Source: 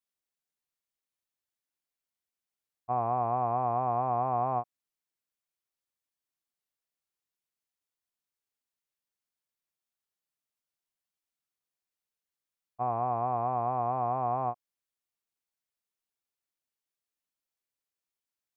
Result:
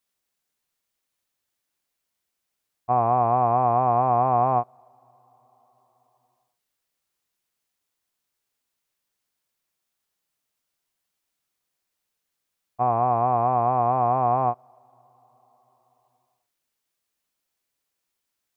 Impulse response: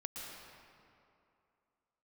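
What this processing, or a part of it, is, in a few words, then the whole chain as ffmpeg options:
ducked reverb: -filter_complex "[0:a]asplit=3[link_01][link_02][link_03];[1:a]atrim=start_sample=2205[link_04];[link_02][link_04]afir=irnorm=-1:irlink=0[link_05];[link_03]apad=whole_len=818570[link_06];[link_05][link_06]sidechaincompress=threshold=-48dB:ratio=12:attack=16:release=1100,volume=-9dB[link_07];[link_01][link_07]amix=inputs=2:normalize=0,volume=8.5dB"

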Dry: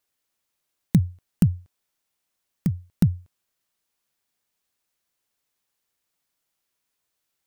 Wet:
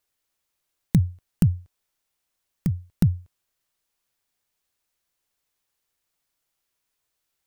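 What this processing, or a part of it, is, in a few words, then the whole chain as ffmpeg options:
low shelf boost with a cut just above: -af "lowshelf=frequency=63:gain=7.5,equalizer=frequency=210:width_type=o:width=0.7:gain=-3.5"

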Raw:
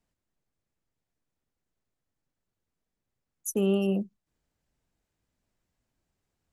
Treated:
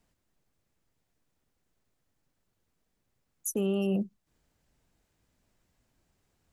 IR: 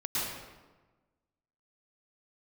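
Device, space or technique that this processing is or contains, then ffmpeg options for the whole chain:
stacked limiters: -af "alimiter=limit=-22.5dB:level=0:latency=1,alimiter=level_in=4.5dB:limit=-24dB:level=0:latency=1:release=380,volume=-4.5dB,volume=7dB"

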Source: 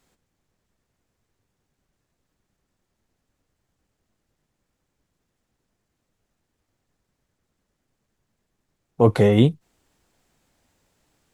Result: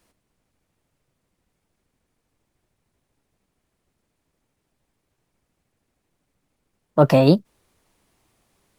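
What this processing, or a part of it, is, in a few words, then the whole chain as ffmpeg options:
nightcore: -af "asetrate=56889,aresample=44100,volume=1.5dB"

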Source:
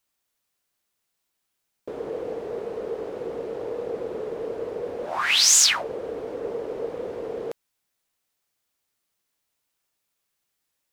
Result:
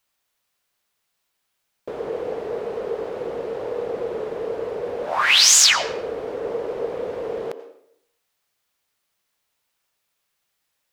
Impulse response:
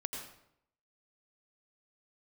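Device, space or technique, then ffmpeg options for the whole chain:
filtered reverb send: -filter_complex "[0:a]asplit=2[link_01][link_02];[link_02]highpass=frequency=280:width=0.5412,highpass=frequency=280:width=1.3066,lowpass=5800[link_03];[1:a]atrim=start_sample=2205[link_04];[link_03][link_04]afir=irnorm=-1:irlink=0,volume=-6dB[link_05];[link_01][link_05]amix=inputs=2:normalize=0,volume=2.5dB"

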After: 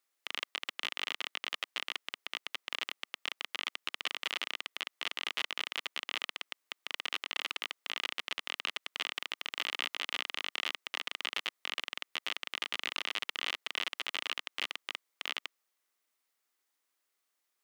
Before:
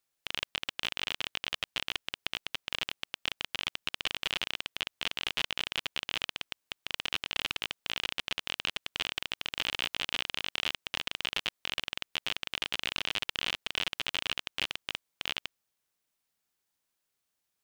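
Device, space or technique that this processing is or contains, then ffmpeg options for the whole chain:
laptop speaker: -af "highpass=frequency=270:width=0.5412,highpass=frequency=270:width=1.3066,equalizer=frequency=1200:width_type=o:width=0.29:gain=5.5,equalizer=frequency=2000:width_type=o:width=0.25:gain=5.5,alimiter=limit=-17.5dB:level=0:latency=1:release=34"

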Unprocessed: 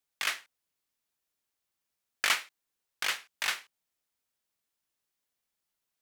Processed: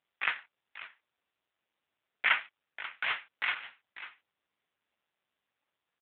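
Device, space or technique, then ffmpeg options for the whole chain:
satellite phone: -af "highpass=370,lowpass=3100,aecho=1:1:542:0.188,volume=7dB" -ar 8000 -c:a libopencore_amrnb -b:a 5900

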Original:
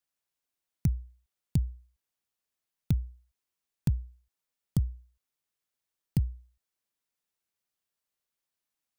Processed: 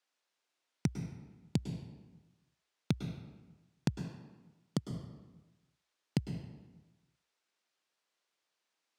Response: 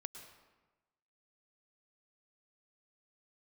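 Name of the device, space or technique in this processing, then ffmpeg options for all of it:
supermarket ceiling speaker: -filter_complex "[0:a]highpass=300,lowpass=5700[link_01];[1:a]atrim=start_sample=2205[link_02];[link_01][link_02]afir=irnorm=-1:irlink=0,asettb=1/sr,asplit=3[link_03][link_04][link_05];[link_03]atrim=end=4.024[link_06];[link_04]atrim=start=4.02:end=4.91,asetpts=PTS-STARTPTS,afade=type=in:duration=0.004:curve=qsin,afade=type=out:start_time=0.886:duration=0.004:curve=qsin,highpass=140[link_07];[link_05]atrim=start=4.906[link_08];[link_06][link_07]acrossfade=duration=0.004:curve1=hsin:curve2=qsin[link_09];[link_09][link_08]acrossfade=duration=0.004:curve1=qsin:curve2=hsin,volume=12dB"

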